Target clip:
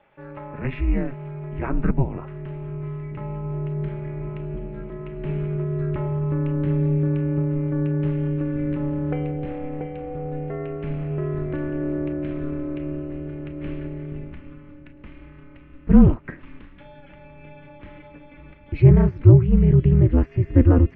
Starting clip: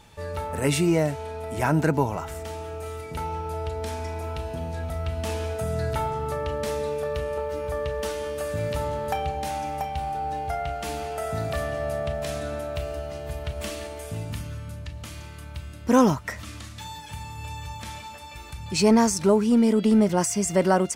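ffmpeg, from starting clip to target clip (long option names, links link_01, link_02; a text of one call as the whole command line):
ffmpeg -i in.wav -af "highpass=frequency=330:width_type=q:width=0.5412,highpass=frequency=330:width_type=q:width=1.307,lowpass=frequency=2700:width_type=q:width=0.5176,lowpass=frequency=2700:width_type=q:width=0.7071,lowpass=frequency=2700:width_type=q:width=1.932,afreqshift=-160,aeval=exprs='val(0)*sin(2*PI*130*n/s)':channel_layout=same,asubboost=boost=11:cutoff=230,volume=-1dB" out.wav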